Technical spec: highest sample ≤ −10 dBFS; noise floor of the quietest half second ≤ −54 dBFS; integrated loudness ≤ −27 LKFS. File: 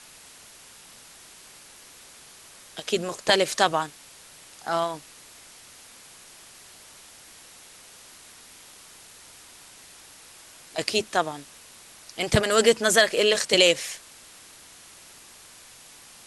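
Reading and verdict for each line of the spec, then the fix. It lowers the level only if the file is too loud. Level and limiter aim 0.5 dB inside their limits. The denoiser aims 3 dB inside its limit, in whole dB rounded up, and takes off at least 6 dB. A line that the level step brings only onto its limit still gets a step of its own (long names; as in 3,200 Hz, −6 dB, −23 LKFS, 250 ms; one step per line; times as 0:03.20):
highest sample −4.5 dBFS: out of spec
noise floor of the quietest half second −49 dBFS: out of spec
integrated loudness −23.0 LKFS: out of spec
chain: broadband denoise 6 dB, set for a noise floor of −49 dBFS
level −4.5 dB
brickwall limiter −10.5 dBFS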